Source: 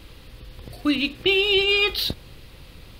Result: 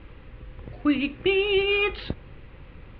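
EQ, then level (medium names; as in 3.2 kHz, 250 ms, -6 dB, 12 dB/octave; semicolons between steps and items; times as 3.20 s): low-pass 2.4 kHz 24 dB/octave; band-stop 680 Hz, Q 12; 0.0 dB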